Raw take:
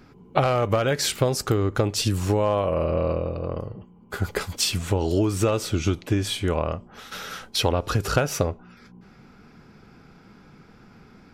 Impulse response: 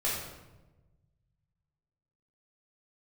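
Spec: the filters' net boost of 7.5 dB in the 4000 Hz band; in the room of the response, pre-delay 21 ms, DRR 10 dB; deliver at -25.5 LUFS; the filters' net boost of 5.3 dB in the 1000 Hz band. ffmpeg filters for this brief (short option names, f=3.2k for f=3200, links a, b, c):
-filter_complex "[0:a]equalizer=f=1k:t=o:g=6.5,equalizer=f=4k:t=o:g=9,asplit=2[a][b];[1:a]atrim=start_sample=2205,adelay=21[c];[b][c]afir=irnorm=-1:irlink=0,volume=-17.5dB[d];[a][d]amix=inputs=2:normalize=0,volume=-4.5dB"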